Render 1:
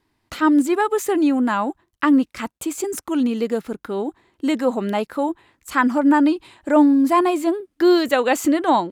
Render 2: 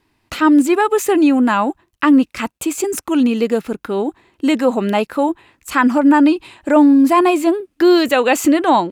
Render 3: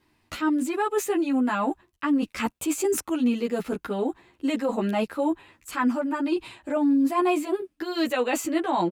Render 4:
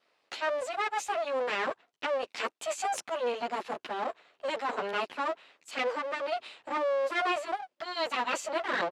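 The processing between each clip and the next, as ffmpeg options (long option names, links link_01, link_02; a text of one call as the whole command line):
ffmpeg -i in.wav -filter_complex "[0:a]equalizer=frequency=2600:width_type=o:width=0.23:gain=6,asplit=2[link_01][link_02];[link_02]alimiter=limit=-11dB:level=0:latency=1,volume=2.5dB[link_03];[link_01][link_03]amix=inputs=2:normalize=0,volume=-2dB" out.wav
ffmpeg -i in.wav -filter_complex "[0:a]areverse,acompressor=threshold=-19dB:ratio=6,areverse,asplit=2[link_01][link_02];[link_02]adelay=10.7,afreqshift=0.4[link_03];[link_01][link_03]amix=inputs=2:normalize=1" out.wav
ffmpeg -i in.wav -filter_complex "[0:a]acrossover=split=2300[link_01][link_02];[link_01]aeval=exprs='abs(val(0))':channel_layout=same[link_03];[link_03][link_02]amix=inputs=2:normalize=0,highpass=390,lowpass=5300" out.wav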